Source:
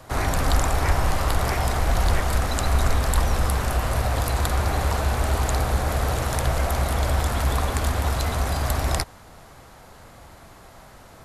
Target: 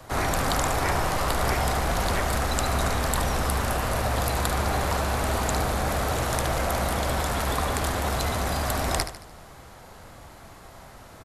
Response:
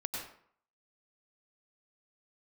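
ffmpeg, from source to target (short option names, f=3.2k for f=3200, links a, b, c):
-filter_complex "[0:a]acrossover=split=140|3900[a][b][c];[a]asoftclip=type=tanh:threshold=-28dB[d];[d][b][c]amix=inputs=3:normalize=0,aecho=1:1:74|148|222|296|370:0.299|0.134|0.0605|0.0272|0.0122"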